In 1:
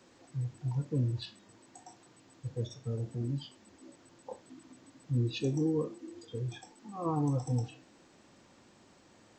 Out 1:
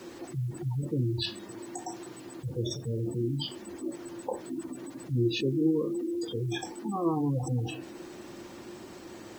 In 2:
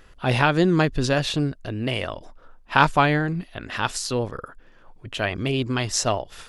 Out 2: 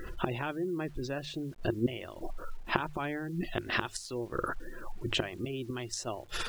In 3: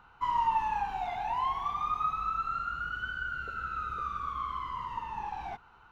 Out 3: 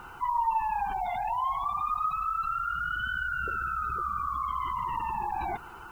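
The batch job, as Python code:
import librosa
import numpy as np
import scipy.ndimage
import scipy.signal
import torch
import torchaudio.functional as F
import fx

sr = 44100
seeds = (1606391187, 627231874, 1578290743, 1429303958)

p1 = fx.gate_flip(x, sr, shuts_db=-18.0, range_db=-25)
p2 = fx.spec_gate(p1, sr, threshold_db=-25, keep='strong')
p3 = fx.peak_eq(p2, sr, hz=350.0, db=12.0, octaves=0.24)
p4 = fx.over_compress(p3, sr, threshold_db=-43.0, ratio=-1.0)
p5 = p3 + (p4 * 10.0 ** (2.0 / 20.0))
p6 = fx.hum_notches(p5, sr, base_hz=50, count=3)
y = fx.quant_dither(p6, sr, seeds[0], bits=10, dither='none')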